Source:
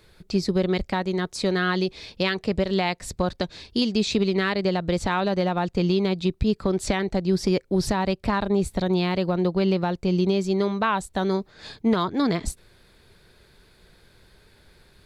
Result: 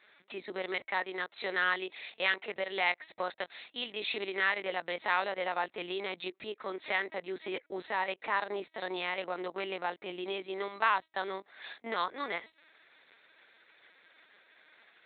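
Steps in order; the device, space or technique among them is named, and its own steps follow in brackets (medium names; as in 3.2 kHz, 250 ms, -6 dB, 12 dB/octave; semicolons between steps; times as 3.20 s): talking toy (LPC vocoder at 8 kHz pitch kept; high-pass 680 Hz 12 dB/octave; peaking EQ 2 kHz +7 dB 0.49 oct); trim -3.5 dB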